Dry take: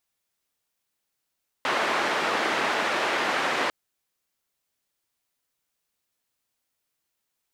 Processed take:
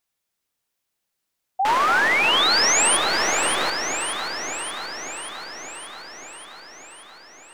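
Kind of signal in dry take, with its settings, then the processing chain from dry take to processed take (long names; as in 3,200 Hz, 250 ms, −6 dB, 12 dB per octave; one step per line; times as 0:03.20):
band-limited noise 330–1,800 Hz, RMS −25.5 dBFS 2.05 s
stylus tracing distortion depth 0.07 ms
sound drawn into the spectrogram rise, 0:01.59–0:02.97, 740–10,000 Hz −20 dBFS
on a send: delay that swaps between a low-pass and a high-pass 290 ms, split 830 Hz, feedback 82%, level −5 dB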